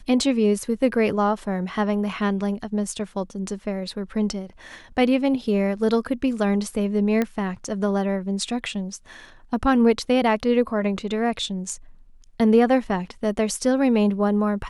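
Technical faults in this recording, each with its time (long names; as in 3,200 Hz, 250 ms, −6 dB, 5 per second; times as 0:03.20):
0:07.22: click −11 dBFS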